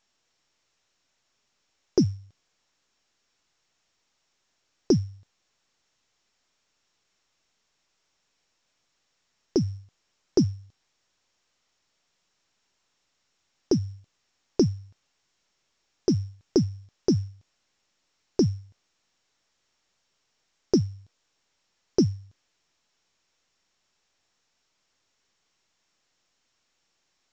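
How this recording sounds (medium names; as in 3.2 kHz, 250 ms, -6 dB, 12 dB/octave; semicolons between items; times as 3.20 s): a buzz of ramps at a fixed pitch in blocks of 8 samples; tremolo triangle 3.1 Hz, depth 35%; a quantiser's noise floor 12-bit, dither triangular; µ-law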